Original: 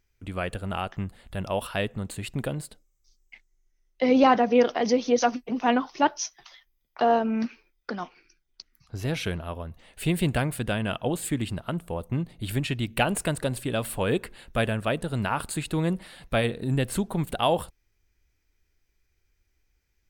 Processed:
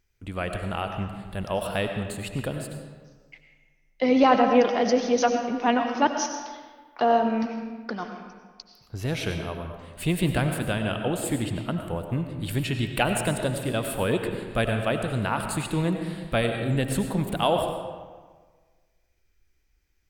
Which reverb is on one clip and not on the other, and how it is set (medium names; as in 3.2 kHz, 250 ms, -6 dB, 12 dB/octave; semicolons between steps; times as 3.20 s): algorithmic reverb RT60 1.5 s, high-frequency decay 0.65×, pre-delay 55 ms, DRR 5 dB